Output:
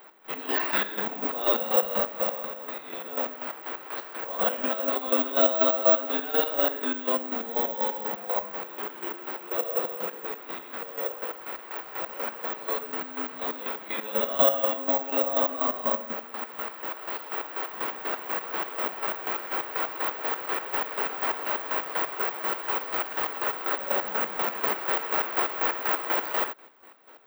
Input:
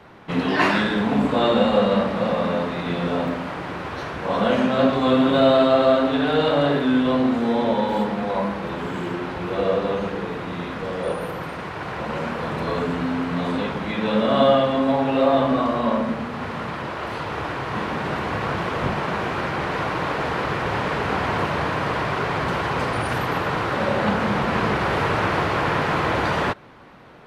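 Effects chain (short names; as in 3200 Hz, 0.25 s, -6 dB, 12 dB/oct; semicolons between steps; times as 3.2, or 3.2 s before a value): chopper 4.1 Hz, depth 65%, duty 40%; 2.37–3.05 compressor 10:1, threshold -27 dBFS, peak gain reduction 8 dB; Bessel high-pass 420 Hz, order 6; careless resampling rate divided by 2×, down none, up zero stuff; gain -4 dB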